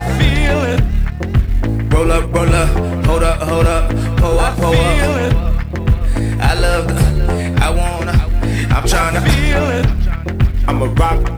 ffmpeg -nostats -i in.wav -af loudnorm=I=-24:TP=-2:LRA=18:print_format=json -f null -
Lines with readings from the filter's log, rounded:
"input_i" : "-15.2",
"input_tp" : "-3.4",
"input_lra" : "0.8",
"input_thresh" : "-25.2",